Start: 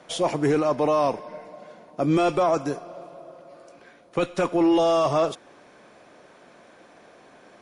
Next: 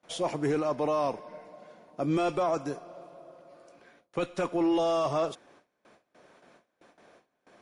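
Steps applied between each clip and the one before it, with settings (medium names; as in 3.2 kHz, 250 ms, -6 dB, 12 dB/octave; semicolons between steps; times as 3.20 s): gate with hold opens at -41 dBFS; trim -6.5 dB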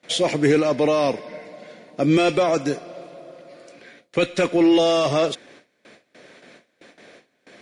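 graphic EQ 125/250/500/1000/2000/4000/8000 Hz +6/+7/+7/-4/+12/+10/+8 dB; trim +2.5 dB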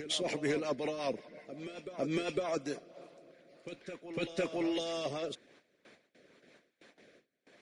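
rotary cabinet horn 5.5 Hz, later 1 Hz, at 2.38 s; reverse echo 505 ms -11 dB; harmonic-percussive split harmonic -9 dB; trim -8.5 dB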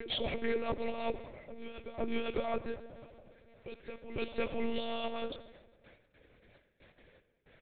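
feedback delay 136 ms, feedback 42%, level -21 dB; on a send at -14 dB: reverberation RT60 1.3 s, pre-delay 66 ms; on the sum: monotone LPC vocoder at 8 kHz 230 Hz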